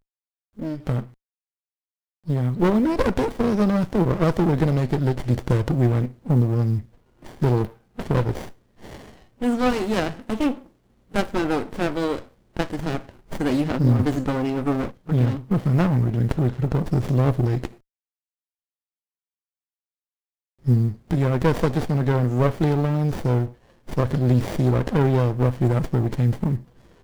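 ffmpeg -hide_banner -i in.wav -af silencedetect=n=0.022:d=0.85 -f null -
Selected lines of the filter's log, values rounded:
silence_start: 1.05
silence_end: 2.28 | silence_duration: 1.22
silence_start: 17.68
silence_end: 20.66 | silence_duration: 2.98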